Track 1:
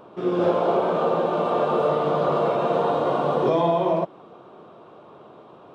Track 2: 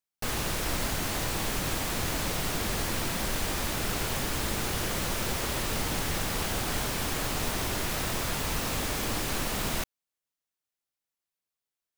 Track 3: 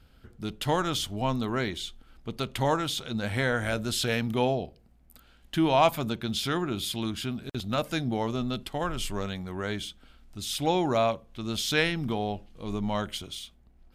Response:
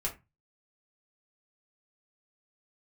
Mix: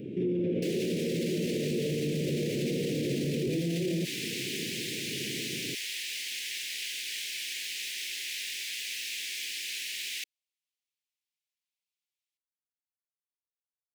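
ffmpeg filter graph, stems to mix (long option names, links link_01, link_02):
-filter_complex "[0:a]acrossover=split=3900[link_01][link_02];[link_02]acompressor=threshold=-59dB:ratio=4:attack=1:release=60[link_03];[link_01][link_03]amix=inputs=2:normalize=0,equalizer=frequency=125:width_type=o:width=1:gain=12,equalizer=frequency=250:width_type=o:width=1:gain=9,equalizer=frequency=500:width_type=o:width=1:gain=4,equalizer=frequency=1000:width_type=o:width=1:gain=10,equalizer=frequency=2000:width_type=o:width=1:gain=11,equalizer=frequency=4000:width_type=o:width=1:gain=-6,acompressor=threshold=-20dB:ratio=2,volume=1.5dB[link_04];[1:a]highpass=frequency=1600:width_type=q:width=3,highshelf=frequency=8500:gain=-11.5,adelay=400,volume=1dB[link_05];[link_04][link_05]amix=inputs=2:normalize=0,asuperstop=centerf=1000:order=8:qfactor=0.5,alimiter=limit=-23dB:level=0:latency=1:release=31"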